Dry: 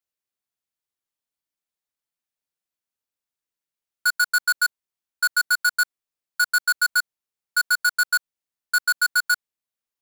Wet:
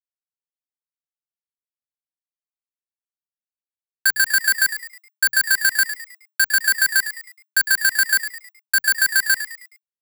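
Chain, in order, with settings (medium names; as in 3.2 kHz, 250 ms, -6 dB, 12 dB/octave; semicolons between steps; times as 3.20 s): compression 12:1, threshold -20 dBFS, peak gain reduction 3 dB; treble shelf 11 kHz +10 dB; bit crusher 6-bit; frequency shift +120 Hz; on a send: frequency-shifting echo 105 ms, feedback 39%, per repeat +130 Hz, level -11 dB; on the sum: trim +4.5 dB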